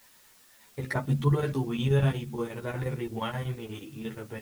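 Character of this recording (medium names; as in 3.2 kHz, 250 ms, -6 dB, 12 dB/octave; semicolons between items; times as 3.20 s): chopped level 8.4 Hz, depth 60%, duty 75%; a quantiser's noise floor 10-bit, dither triangular; a shimmering, thickened sound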